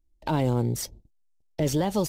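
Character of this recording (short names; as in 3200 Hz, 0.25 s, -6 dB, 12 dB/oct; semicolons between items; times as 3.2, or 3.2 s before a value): noise floor -67 dBFS; spectral tilt -6.0 dB/oct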